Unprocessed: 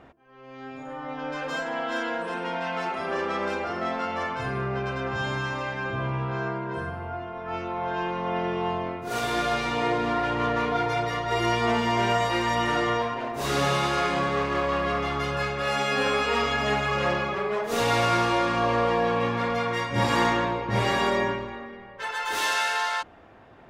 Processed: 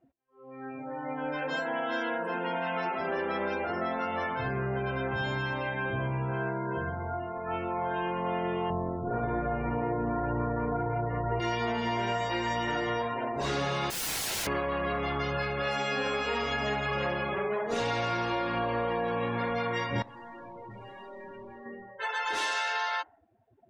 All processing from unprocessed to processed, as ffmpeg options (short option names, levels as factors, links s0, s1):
-filter_complex "[0:a]asettb=1/sr,asplit=3[s0][s1][s2];[s0]atrim=end=8.704[s3];[s1]atrim=start=8.7:end=11.4,asetpts=PTS-STARTPTS,afade=t=in:d=0.004:c=qsin,afade=t=out:st=2.696:d=0.004:c=qsin,lowpass=1300,lowshelf=f=190:g=10[s4];[s2]atrim=start=11.396[s5];[s3][s4]acrossfade=d=0.004:c1=hsin:c2=qsin[s6];[s6][s5]acrossfade=d=0.004:c1=qsin:c2=hsin,asettb=1/sr,asplit=3[s7][s8][s9];[s7]atrim=end=13.904[s10];[s8]atrim=start=13.9:end=14.47,asetpts=PTS-STARTPTS,afade=t=in:d=0.004:c=qsin,afade=t=out:st=0.566:d=0.004:c=qsin,acontrast=46,aeval=exprs='(mod(18.8*val(0)+1,2)-1)/18.8':c=same[s11];[s9]atrim=start=14.466[s12];[s10][s11]acrossfade=d=0.004:c1=hsin:c2=qsin[s13];[s13][s12]acrossfade=d=0.004:c1=qsin:c2=hsin,asettb=1/sr,asplit=3[s14][s15][s16];[s14]atrim=end=20.024[s17];[s15]atrim=start=20.02:end=21.66,asetpts=PTS-STARTPTS,afade=t=in:d=0.004:c=qsin,afade=t=out:st=1.636:d=0.004:c=qsin,bandreject=f=60:t=h:w=6,bandreject=f=120:t=h:w=6,bandreject=f=180:t=h:w=6,bandreject=f=240:t=h:w=6,bandreject=f=300:t=h:w=6,bandreject=f=360:t=h:w=6,bandreject=f=420:t=h:w=6,bandreject=f=480:t=h:w=6,bandreject=f=540:t=h:w=6,acompressor=threshold=0.0398:ratio=6:attack=3.2:release=140:knee=1:detection=peak,aeval=exprs='(tanh(112*val(0)+0.2)-tanh(0.2))/112':c=same[s18];[s16]atrim=start=21.656[s19];[s17][s18]acrossfade=d=0.004:c1=hsin:c2=qsin[s20];[s20][s19]acrossfade=d=0.004:c1=qsin:c2=hsin,afftdn=nr=29:nf=-39,bandreject=f=1200:w=10,acompressor=threshold=0.0447:ratio=6"